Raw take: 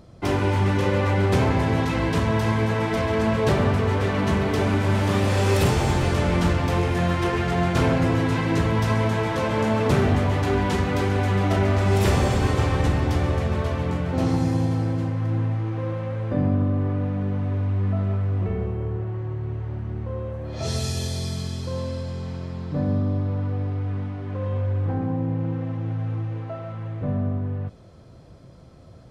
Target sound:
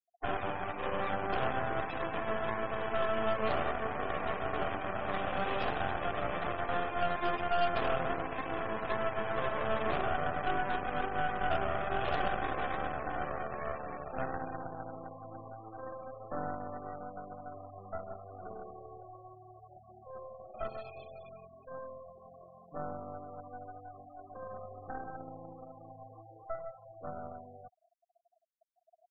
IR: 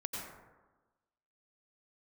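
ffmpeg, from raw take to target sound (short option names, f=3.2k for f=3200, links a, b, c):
-filter_complex "[0:a]asplit=3[a][b][c];[a]bandpass=f=730:t=q:w=8,volume=0dB[d];[b]bandpass=f=1.09k:t=q:w=8,volume=-6dB[e];[c]bandpass=f=2.44k:t=q:w=8,volume=-9dB[f];[d][e][f]amix=inputs=3:normalize=0,aeval=exprs='0.0841*(cos(1*acos(clip(val(0)/0.0841,-1,1)))-cos(1*PI/2))+0.0106*(cos(2*acos(clip(val(0)/0.0841,-1,1)))-cos(2*PI/2))+0.000841*(cos(3*acos(clip(val(0)/0.0841,-1,1)))-cos(3*PI/2))+0.0211*(cos(6*acos(clip(val(0)/0.0841,-1,1)))-cos(6*PI/2))+0.00106*(cos(8*acos(clip(val(0)/0.0841,-1,1)))-cos(8*PI/2))':c=same,afftfilt=real='re*gte(hypot(re,im),0.00708)':imag='im*gte(hypot(re,im),0.00708)':win_size=1024:overlap=0.75"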